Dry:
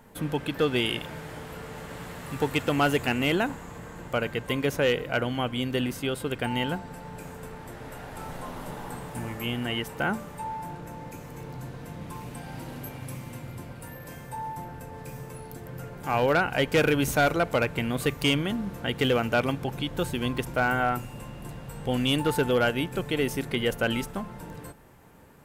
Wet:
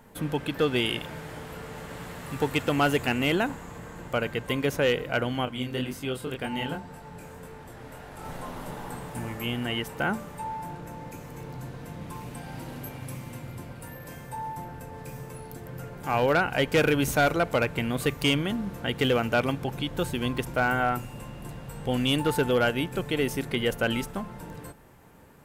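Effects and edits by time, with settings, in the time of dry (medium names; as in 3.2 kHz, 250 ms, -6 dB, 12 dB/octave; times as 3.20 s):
5.45–8.25 s: chorus 1.9 Hz, delay 20 ms, depth 5.3 ms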